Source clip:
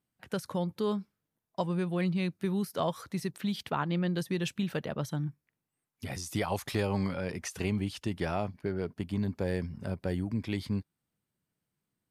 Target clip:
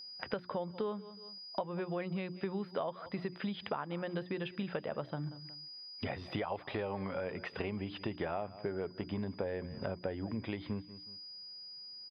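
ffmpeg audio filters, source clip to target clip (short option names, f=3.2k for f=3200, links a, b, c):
-af "firequalizer=gain_entry='entry(120,0);entry(540,11);entry(3600,8);entry(6600,-29)':delay=0.05:min_phase=1,aeval=exprs='val(0)+0.00562*sin(2*PI*4900*n/s)':c=same,bandreject=f=60:t=h:w=6,bandreject=f=120:t=h:w=6,bandreject=f=180:t=h:w=6,bandreject=f=240:t=h:w=6,bandreject=f=300:t=h:w=6,bandreject=f=360:t=h:w=6,aecho=1:1:183|366:0.0794|0.0167,acompressor=threshold=-41dB:ratio=6,highshelf=f=2k:g=-8,volume=6dB"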